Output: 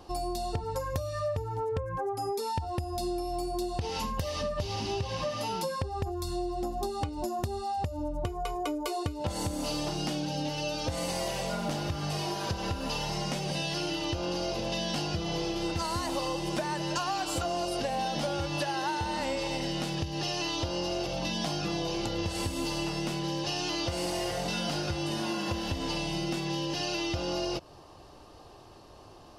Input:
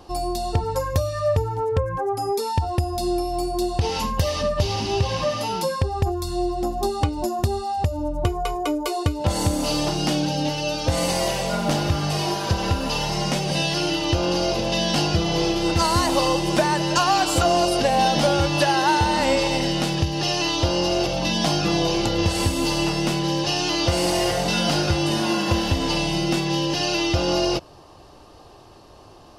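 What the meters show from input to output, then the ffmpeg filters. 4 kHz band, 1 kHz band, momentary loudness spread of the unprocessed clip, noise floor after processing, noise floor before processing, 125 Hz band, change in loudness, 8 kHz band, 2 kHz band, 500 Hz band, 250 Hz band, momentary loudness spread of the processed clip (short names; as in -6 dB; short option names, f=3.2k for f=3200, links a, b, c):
-10.0 dB, -10.0 dB, 6 LU, -51 dBFS, -47 dBFS, -11.0 dB, -10.0 dB, -10.0 dB, -10.5 dB, -10.0 dB, -10.0 dB, 3 LU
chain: -af "acompressor=threshold=-25dB:ratio=4,volume=-4.5dB"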